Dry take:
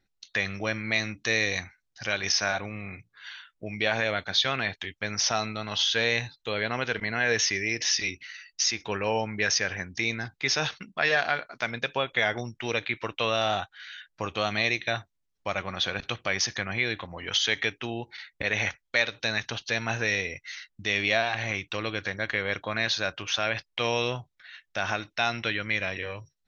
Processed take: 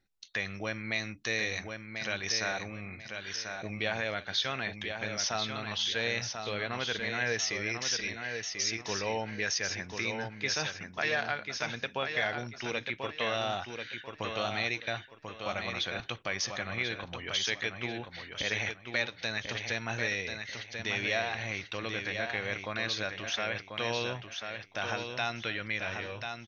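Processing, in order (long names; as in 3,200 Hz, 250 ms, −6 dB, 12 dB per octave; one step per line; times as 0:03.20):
in parallel at −2 dB: downward compressor, threshold −35 dBFS, peak gain reduction 16 dB
on the sum: repeating echo 1,040 ms, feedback 28%, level −6 dB
level −8 dB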